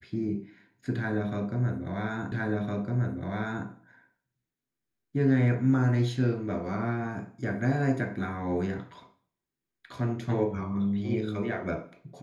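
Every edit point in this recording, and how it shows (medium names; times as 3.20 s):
2.32 s: repeat of the last 1.36 s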